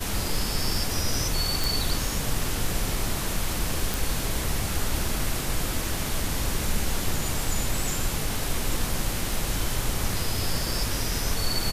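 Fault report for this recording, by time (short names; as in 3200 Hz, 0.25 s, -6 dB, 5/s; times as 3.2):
1.64 pop
3.94 pop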